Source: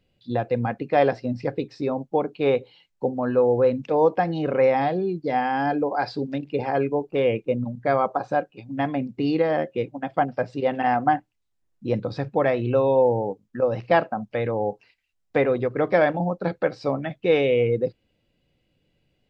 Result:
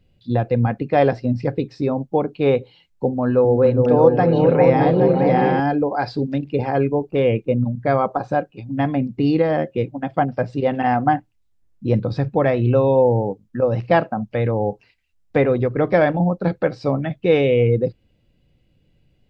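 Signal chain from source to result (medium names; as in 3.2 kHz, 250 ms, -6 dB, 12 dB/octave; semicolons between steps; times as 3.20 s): bass shelf 200 Hz +11.5 dB; 3.24–5.60 s: delay with an opening low-pass 206 ms, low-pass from 200 Hz, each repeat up 2 oct, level 0 dB; trim +1.5 dB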